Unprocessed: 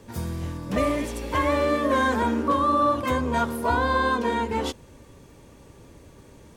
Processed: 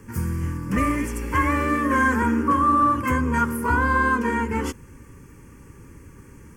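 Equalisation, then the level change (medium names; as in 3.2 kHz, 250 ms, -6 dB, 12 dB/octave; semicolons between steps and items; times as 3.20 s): static phaser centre 1.6 kHz, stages 4; +5.5 dB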